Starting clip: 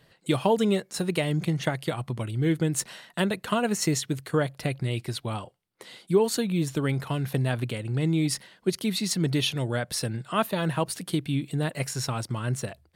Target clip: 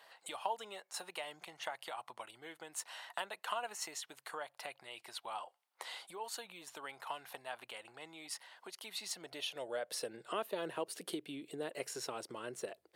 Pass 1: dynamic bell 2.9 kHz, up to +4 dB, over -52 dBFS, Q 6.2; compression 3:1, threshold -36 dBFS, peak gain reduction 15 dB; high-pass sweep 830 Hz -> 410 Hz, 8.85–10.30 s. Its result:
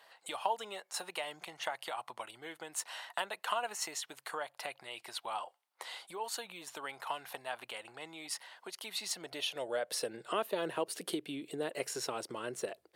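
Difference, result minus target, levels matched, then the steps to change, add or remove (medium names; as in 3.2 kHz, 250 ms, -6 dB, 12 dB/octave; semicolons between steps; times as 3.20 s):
compression: peak gain reduction -4.5 dB
change: compression 3:1, threshold -42.5 dBFS, peak gain reduction 19.5 dB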